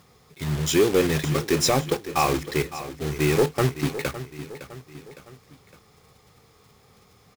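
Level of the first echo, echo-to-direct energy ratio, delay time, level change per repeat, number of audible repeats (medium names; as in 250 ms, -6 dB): -13.5 dB, -12.5 dB, 560 ms, -6.0 dB, 3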